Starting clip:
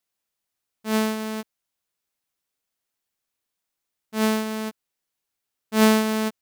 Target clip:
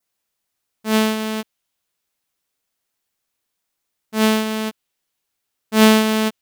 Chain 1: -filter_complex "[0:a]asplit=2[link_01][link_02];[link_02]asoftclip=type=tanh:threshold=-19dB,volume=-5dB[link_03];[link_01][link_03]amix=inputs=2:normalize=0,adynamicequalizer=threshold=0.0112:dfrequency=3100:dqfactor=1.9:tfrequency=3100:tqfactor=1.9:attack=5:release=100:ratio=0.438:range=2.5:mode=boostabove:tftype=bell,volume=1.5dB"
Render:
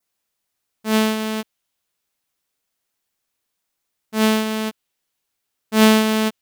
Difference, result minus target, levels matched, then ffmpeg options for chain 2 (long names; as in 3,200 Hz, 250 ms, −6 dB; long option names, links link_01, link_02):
soft clipping: distortion +8 dB
-filter_complex "[0:a]asplit=2[link_01][link_02];[link_02]asoftclip=type=tanh:threshold=-12dB,volume=-5dB[link_03];[link_01][link_03]amix=inputs=2:normalize=0,adynamicequalizer=threshold=0.0112:dfrequency=3100:dqfactor=1.9:tfrequency=3100:tqfactor=1.9:attack=5:release=100:ratio=0.438:range=2.5:mode=boostabove:tftype=bell,volume=1.5dB"